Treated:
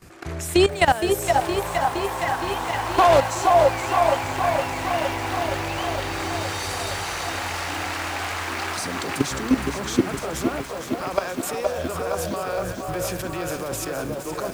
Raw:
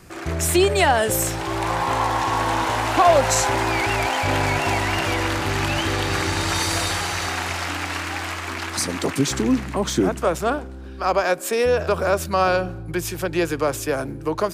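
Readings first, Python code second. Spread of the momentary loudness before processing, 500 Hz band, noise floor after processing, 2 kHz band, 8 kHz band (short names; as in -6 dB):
9 LU, -1.0 dB, -32 dBFS, -3.5 dB, -5.0 dB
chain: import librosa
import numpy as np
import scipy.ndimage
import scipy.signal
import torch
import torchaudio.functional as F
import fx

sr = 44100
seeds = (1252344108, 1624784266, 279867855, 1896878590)

y = fx.level_steps(x, sr, step_db=16)
y = fx.echo_stepped(y, sr, ms=479, hz=600.0, octaves=0.7, feedback_pct=70, wet_db=-1.0)
y = fx.echo_crushed(y, sr, ms=466, feedback_pct=80, bits=7, wet_db=-7.5)
y = y * librosa.db_to_amplitude(2.0)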